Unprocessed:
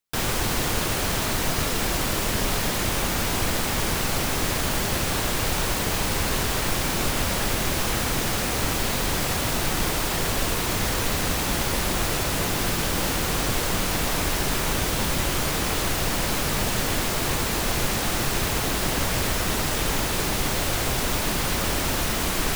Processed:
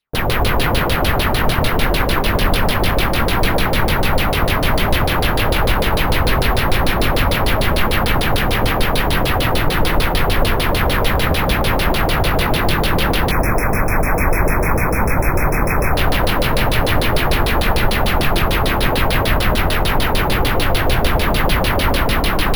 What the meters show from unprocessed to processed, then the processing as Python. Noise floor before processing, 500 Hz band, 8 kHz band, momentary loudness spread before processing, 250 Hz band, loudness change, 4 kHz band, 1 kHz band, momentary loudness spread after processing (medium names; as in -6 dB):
-26 dBFS, +10.0 dB, -4.5 dB, 0 LU, +8.0 dB, +7.0 dB, +5.5 dB, +10.0 dB, 1 LU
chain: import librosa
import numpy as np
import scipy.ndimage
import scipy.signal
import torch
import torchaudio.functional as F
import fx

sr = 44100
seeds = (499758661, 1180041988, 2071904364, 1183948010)

p1 = fx.filter_lfo_lowpass(x, sr, shape='saw_down', hz=6.7, low_hz=450.0, high_hz=4600.0, q=3.5)
p2 = fx.low_shelf(p1, sr, hz=140.0, db=7.0)
p3 = np.repeat(p2[::3], 3)[:len(p2)]
p4 = p3 + fx.echo_feedback(p3, sr, ms=170, feedback_pct=40, wet_db=-4.5, dry=0)
p5 = fx.spec_erase(p4, sr, start_s=13.31, length_s=2.65, low_hz=2600.0, high_hz=5200.0)
y = p5 * 10.0 ** (4.0 / 20.0)